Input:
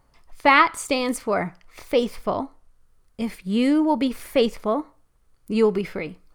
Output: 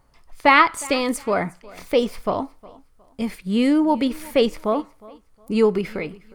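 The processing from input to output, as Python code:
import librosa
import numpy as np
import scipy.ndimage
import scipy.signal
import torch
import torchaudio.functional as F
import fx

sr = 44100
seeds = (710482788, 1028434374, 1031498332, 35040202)

y = fx.echo_feedback(x, sr, ms=361, feedback_pct=28, wet_db=-22.0)
y = y * librosa.db_to_amplitude(1.5)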